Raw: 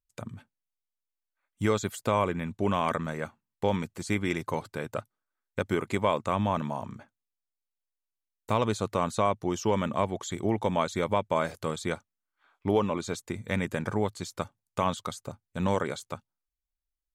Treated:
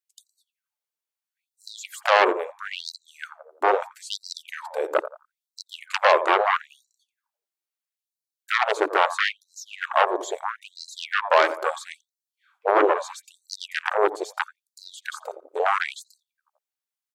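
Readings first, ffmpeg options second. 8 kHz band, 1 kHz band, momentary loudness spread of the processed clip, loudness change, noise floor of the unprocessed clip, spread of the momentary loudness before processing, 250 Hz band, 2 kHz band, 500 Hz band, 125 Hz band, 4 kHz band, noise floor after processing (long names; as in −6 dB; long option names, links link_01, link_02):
+1.5 dB, +7.5 dB, 21 LU, +6.5 dB, below −85 dBFS, 11 LU, −7.5 dB, +11.5 dB, +4.5 dB, below −40 dB, +8.5 dB, below −85 dBFS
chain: -filter_complex "[0:a]asubboost=boost=10.5:cutoff=110,asplit=2[link_01][link_02];[link_02]acompressor=threshold=-36dB:ratio=6,volume=-1.5dB[link_03];[link_01][link_03]amix=inputs=2:normalize=0,afwtdn=0.02,asplit=2[link_04][link_05];[link_05]adelay=86,lowpass=frequency=1100:poles=1,volume=-13.5dB,asplit=2[link_06][link_07];[link_07]adelay=86,lowpass=frequency=1100:poles=1,volume=0.47,asplit=2[link_08][link_09];[link_09]adelay=86,lowpass=frequency=1100:poles=1,volume=0.47,asplit=2[link_10][link_11];[link_11]adelay=86,lowpass=frequency=1100:poles=1,volume=0.47,asplit=2[link_12][link_13];[link_13]adelay=86,lowpass=frequency=1100:poles=1,volume=0.47[link_14];[link_06][link_08][link_10][link_12][link_14]amix=inputs=5:normalize=0[link_15];[link_04][link_15]amix=inputs=2:normalize=0,aeval=exprs='0.376*sin(PI/2*3.55*val(0)/0.376)':channel_layout=same,afftfilt=real='re*gte(b*sr/1024,300*pow(4000/300,0.5+0.5*sin(2*PI*0.76*pts/sr)))':imag='im*gte(b*sr/1024,300*pow(4000/300,0.5+0.5*sin(2*PI*0.76*pts/sr)))':win_size=1024:overlap=0.75"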